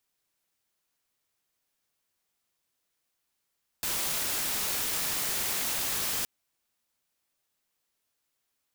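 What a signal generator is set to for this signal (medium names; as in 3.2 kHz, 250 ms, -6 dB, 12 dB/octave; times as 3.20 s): noise white, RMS -30.5 dBFS 2.42 s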